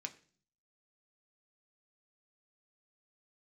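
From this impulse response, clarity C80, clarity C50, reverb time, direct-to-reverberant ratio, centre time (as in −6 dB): 20.0 dB, 16.5 dB, 0.45 s, 4.5 dB, 6 ms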